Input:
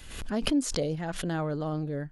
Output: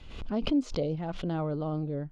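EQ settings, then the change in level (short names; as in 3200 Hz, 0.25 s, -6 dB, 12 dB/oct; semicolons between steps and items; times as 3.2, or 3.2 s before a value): air absorption 210 m; bell 1700 Hz -11.5 dB 0.43 oct; 0.0 dB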